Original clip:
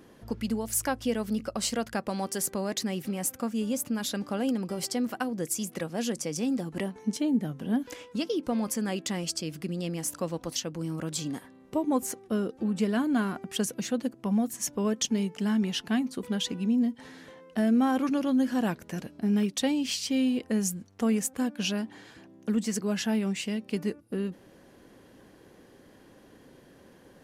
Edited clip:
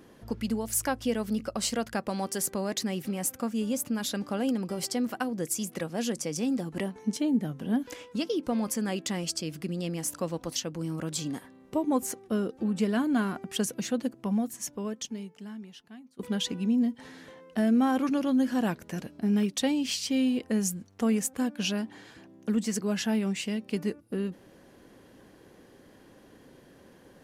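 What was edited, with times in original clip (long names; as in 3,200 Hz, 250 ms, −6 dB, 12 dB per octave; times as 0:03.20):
0:14.16–0:16.19: fade out quadratic, to −22 dB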